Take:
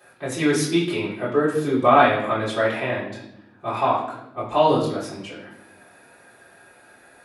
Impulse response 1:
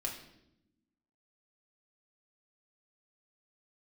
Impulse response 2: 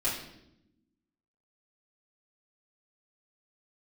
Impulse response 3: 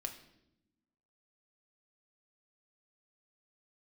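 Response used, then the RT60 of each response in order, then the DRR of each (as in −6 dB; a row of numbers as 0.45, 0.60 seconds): 2; 0.80, 0.80, 0.85 seconds; −1.0, −10.0, 4.0 decibels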